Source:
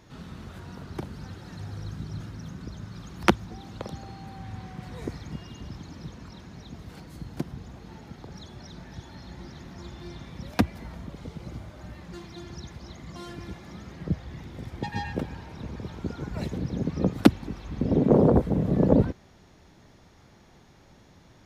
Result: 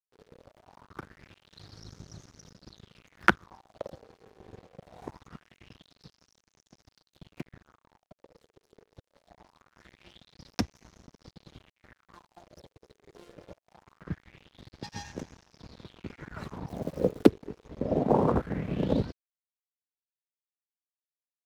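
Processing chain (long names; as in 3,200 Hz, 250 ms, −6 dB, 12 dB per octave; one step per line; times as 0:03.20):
0:16.68–0:17.27: surface crackle 420 per second −34 dBFS
dead-zone distortion −38 dBFS
auto-filter bell 0.23 Hz 420–6,200 Hz +15 dB
level −7 dB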